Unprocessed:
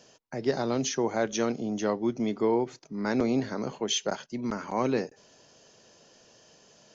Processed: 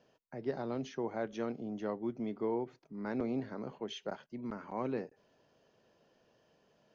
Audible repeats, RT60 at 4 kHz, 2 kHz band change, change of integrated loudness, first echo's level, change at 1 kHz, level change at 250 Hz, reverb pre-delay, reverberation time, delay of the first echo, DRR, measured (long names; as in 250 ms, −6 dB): no echo audible, no reverb audible, −11.5 dB, −9.5 dB, no echo audible, −10.0 dB, −9.0 dB, no reverb audible, no reverb audible, no echo audible, no reverb audible